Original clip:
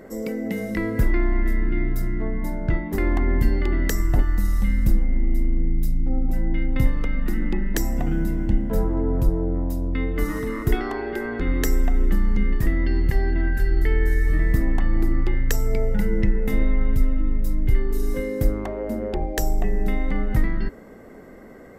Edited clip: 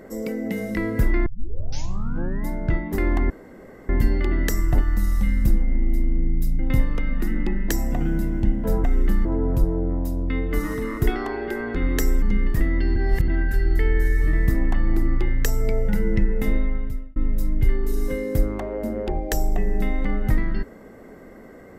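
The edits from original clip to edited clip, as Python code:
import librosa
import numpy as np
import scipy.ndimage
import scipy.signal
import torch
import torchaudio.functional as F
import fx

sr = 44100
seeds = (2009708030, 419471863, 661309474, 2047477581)

y = fx.edit(x, sr, fx.tape_start(start_s=1.26, length_s=1.22),
    fx.insert_room_tone(at_s=3.3, length_s=0.59),
    fx.cut(start_s=6.0, length_s=0.65),
    fx.move(start_s=11.87, length_s=0.41, to_s=8.9),
    fx.reverse_span(start_s=13.02, length_s=0.32),
    fx.fade_out_span(start_s=16.54, length_s=0.68), tone=tone)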